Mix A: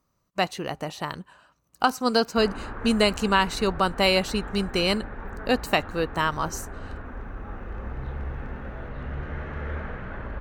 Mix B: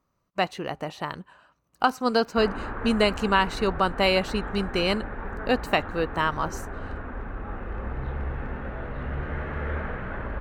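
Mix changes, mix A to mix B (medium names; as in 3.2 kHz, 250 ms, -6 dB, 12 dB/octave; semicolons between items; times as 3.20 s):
background +3.5 dB; master: add tone controls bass -2 dB, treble -8 dB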